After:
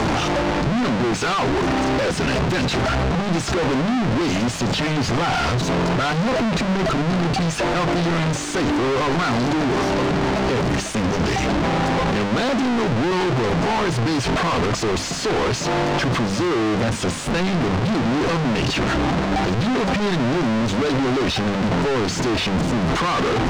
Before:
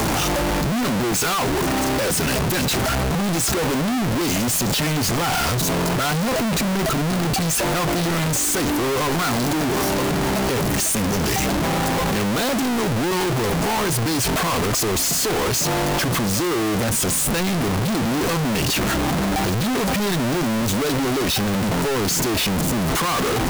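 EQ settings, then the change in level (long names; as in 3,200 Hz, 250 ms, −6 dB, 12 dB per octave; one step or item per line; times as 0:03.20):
high-frequency loss of the air 130 metres
mains-hum notches 50/100/150/200 Hz
+2.0 dB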